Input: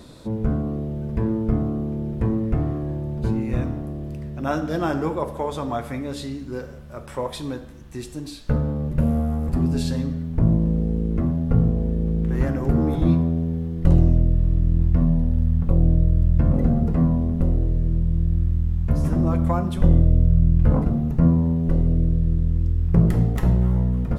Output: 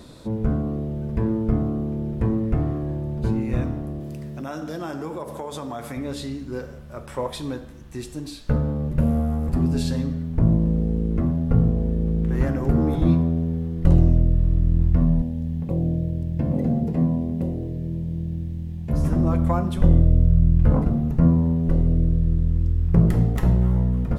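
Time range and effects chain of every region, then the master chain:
0:04.00–0:05.97: high-pass filter 110 Hz + bass and treble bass 0 dB, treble +6 dB + downward compressor 4 to 1, threshold −28 dBFS
0:15.22–0:18.93: high-pass filter 130 Hz + parametric band 1,300 Hz −13 dB 0.57 octaves
whole clip: no processing

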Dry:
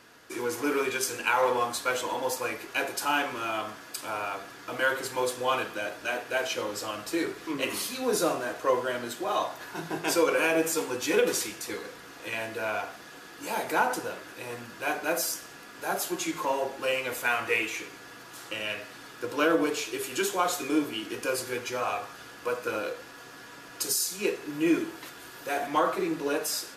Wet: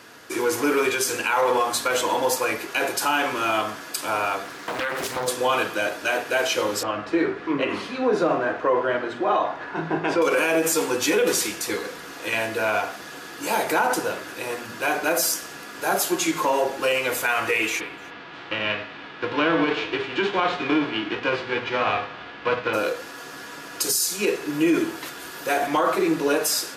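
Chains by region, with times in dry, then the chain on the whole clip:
0:04.44–0:05.28: downward compressor, threshold −31 dBFS + highs frequency-modulated by the lows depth 0.94 ms
0:06.83–0:10.22: low-pass filter 2,200 Hz + double-tracking delay 49 ms −13.5 dB
0:17.79–0:22.73: spectral envelope flattened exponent 0.6 + low-pass filter 3,300 Hz 24 dB per octave + single-tap delay 303 ms −24 dB
whole clip: brickwall limiter −20.5 dBFS; high-pass filter 58 Hz; mains-hum notches 60/120/180/240 Hz; level +8.5 dB

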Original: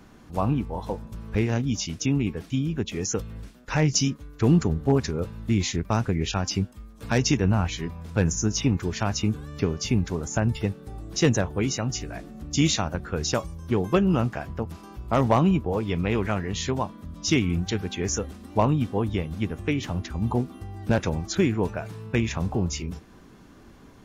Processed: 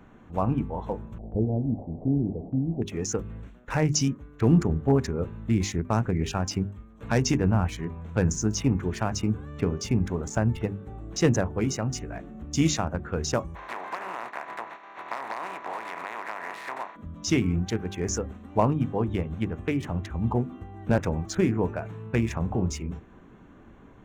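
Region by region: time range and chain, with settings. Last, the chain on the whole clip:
0:01.18–0:02.82: linear delta modulator 16 kbit/s, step −31.5 dBFS + elliptic low-pass filter 730 Hz, stop band 50 dB + noise gate with hold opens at −32 dBFS, closes at −35 dBFS
0:13.54–0:16.95: compressing power law on the bin magnitudes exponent 0.31 + downward compressor 16 to 1, threshold −27 dBFS + loudspeaker in its box 440–4,500 Hz, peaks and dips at 480 Hz −4 dB, 700 Hz +4 dB, 1,000 Hz +8 dB, 1,900 Hz +5 dB, 3,100 Hz −8 dB
whole clip: adaptive Wiener filter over 9 samples; dynamic equaliser 3,500 Hz, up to −7 dB, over −46 dBFS, Q 1.2; mains-hum notches 50/100/150/200/250/300/350/400 Hz

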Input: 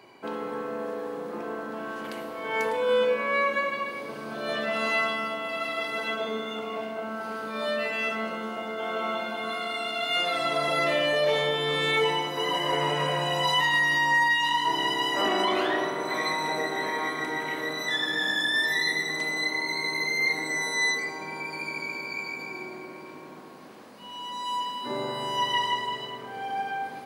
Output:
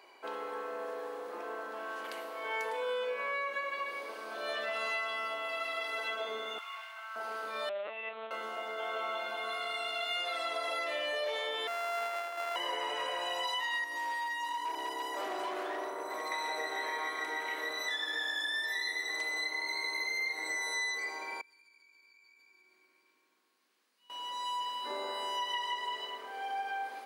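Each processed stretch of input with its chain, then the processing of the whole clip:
0:06.58–0:07.16: running median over 5 samples + inverse Chebyshev high-pass filter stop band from 240 Hz, stop band 70 dB
0:07.69–0:08.31: running median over 25 samples + linear-prediction vocoder at 8 kHz pitch kept
0:11.67–0:12.56: samples sorted by size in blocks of 64 samples + high-pass filter 190 Hz 24 dB per octave + three-way crossover with the lows and the highs turned down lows −15 dB, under 560 Hz, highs −15 dB, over 2,500 Hz
0:13.84–0:16.32: parametric band 3,000 Hz −13.5 dB 1.9 octaves + hard clipping −26 dBFS
0:21.41–0:24.10: guitar amp tone stack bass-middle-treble 6-0-2 + downward compressor 10 to 1, threshold −56 dBFS
whole clip: Bessel high-pass filter 540 Hz, order 4; downward compressor, threshold −29 dBFS; level −3 dB

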